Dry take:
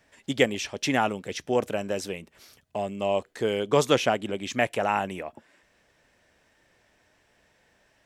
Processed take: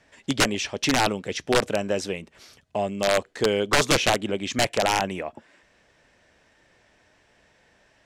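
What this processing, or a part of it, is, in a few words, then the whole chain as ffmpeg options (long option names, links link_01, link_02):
overflowing digital effects unit: -af "aeval=exprs='(mod(5.96*val(0)+1,2)-1)/5.96':channel_layout=same,lowpass=8200,volume=4dB"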